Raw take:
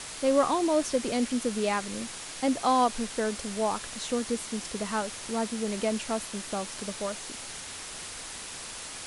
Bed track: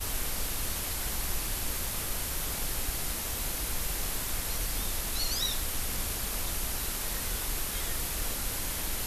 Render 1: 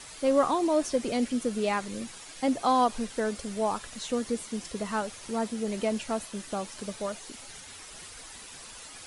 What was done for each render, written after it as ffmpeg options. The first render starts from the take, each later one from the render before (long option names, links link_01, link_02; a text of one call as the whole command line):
ffmpeg -i in.wav -af "afftdn=noise_reduction=9:noise_floor=-41" out.wav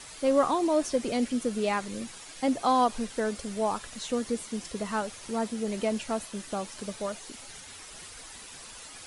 ffmpeg -i in.wav -af anull out.wav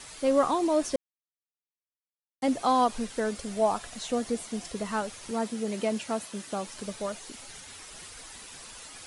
ffmpeg -i in.wav -filter_complex "[0:a]asettb=1/sr,asplit=3[link_01][link_02][link_03];[link_01]atrim=end=3.484[link_04];[link_02]atrim=start=3.48:end=4.72,asetpts=PTS-STARTPTS,afade=type=in:duration=0.004:curve=qsin,afade=type=out:start_time=1.236:duration=0.004:curve=qsin,equalizer=frequency=700:width=6:gain=9.5[link_05];[link_03]atrim=start=4.716[link_06];[link_04][link_05]acrossfade=duration=0.004:curve1=hsin:curve2=qsin[link_07];[link_07][link_06]acrossfade=duration=0.004:curve1=qsin:curve2=hsin,asettb=1/sr,asplit=3[link_08][link_09][link_10];[link_08]atrim=end=5.314[link_11];[link_09]atrim=start=5.31:end=6.67,asetpts=PTS-STARTPTS,afade=type=in:duration=0.004:curve=qsin,afade=type=out:start_time=1.356:duration=0.004:curve=qsin,highpass=110[link_12];[link_10]atrim=start=6.666[link_13];[link_11][link_12]acrossfade=duration=0.004:curve1=hsin:curve2=qsin[link_14];[link_14][link_13]acrossfade=duration=0.004:curve1=qsin:curve2=hsin,asplit=3[link_15][link_16][link_17];[link_15]atrim=end=0.96,asetpts=PTS-STARTPTS,afade=type=out:start_time=0.956:duration=0.004:curve=hsin[link_18];[link_16]atrim=start=0.96:end=2.42,asetpts=PTS-STARTPTS,volume=0[link_19];[link_17]atrim=start=2.42,asetpts=PTS-STARTPTS,afade=type=in:duration=0.004:curve=hsin[link_20];[link_18][link_19][link_20]concat=n=3:v=0:a=1" out.wav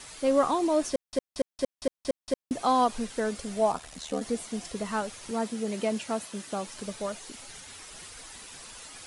ffmpeg -i in.wav -filter_complex "[0:a]asplit=3[link_01][link_02][link_03];[link_01]afade=type=out:start_time=3.71:duration=0.02[link_04];[link_02]aeval=exprs='val(0)*sin(2*PI*38*n/s)':channel_layout=same,afade=type=in:start_time=3.71:duration=0.02,afade=type=out:start_time=4.2:duration=0.02[link_05];[link_03]afade=type=in:start_time=4.2:duration=0.02[link_06];[link_04][link_05][link_06]amix=inputs=3:normalize=0,asplit=8[link_07][link_08][link_09][link_10][link_11][link_12][link_13][link_14];[link_07]atrim=end=1.132[link_15];[link_08]atrim=start=0.898:end=1.132[link_16];[link_09]atrim=start=0.898:end=1.132[link_17];[link_10]atrim=start=0.898:end=1.132[link_18];[link_11]atrim=start=0.898:end=1.132[link_19];[link_12]atrim=start=0.898:end=1.132[link_20];[link_13]atrim=start=0.898:end=1.132[link_21];[link_14]atrim=start=2.508[link_22];[link_15][link_16]acrossfade=duration=0.004:curve1=hsin:curve2=hsin[link_23];[link_23][link_17]acrossfade=duration=0.004:curve1=hsin:curve2=hsin[link_24];[link_24][link_18]acrossfade=duration=0.004:curve1=hsin:curve2=hsin[link_25];[link_25][link_19]acrossfade=duration=0.004:curve1=hsin:curve2=hsin[link_26];[link_26][link_20]acrossfade=duration=0.004:curve1=hsin:curve2=hsin[link_27];[link_27][link_21]acrossfade=duration=0.004:curve1=hsin:curve2=hsin[link_28];[link_28][link_22]acrossfade=duration=0.004:curve1=hsin:curve2=hsin" out.wav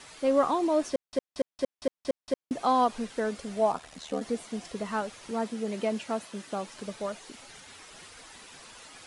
ffmpeg -i in.wav -af "lowpass=frequency=3900:poles=1,lowshelf=frequency=83:gain=-10" out.wav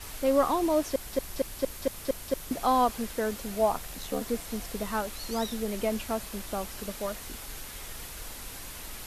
ffmpeg -i in.wav -i bed.wav -filter_complex "[1:a]volume=-9dB[link_01];[0:a][link_01]amix=inputs=2:normalize=0" out.wav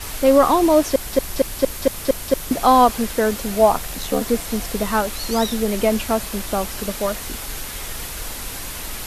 ffmpeg -i in.wav -af "volume=11dB,alimiter=limit=-3dB:level=0:latency=1" out.wav